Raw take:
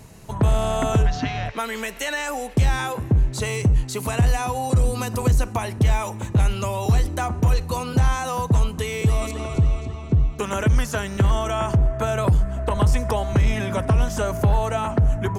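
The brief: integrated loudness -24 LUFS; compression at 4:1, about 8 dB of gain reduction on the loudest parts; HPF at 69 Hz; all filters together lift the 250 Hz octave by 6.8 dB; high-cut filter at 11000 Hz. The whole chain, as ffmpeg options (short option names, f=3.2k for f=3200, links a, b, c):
-af "highpass=69,lowpass=11k,equalizer=f=250:t=o:g=9,acompressor=threshold=-21dB:ratio=4,volume=2dB"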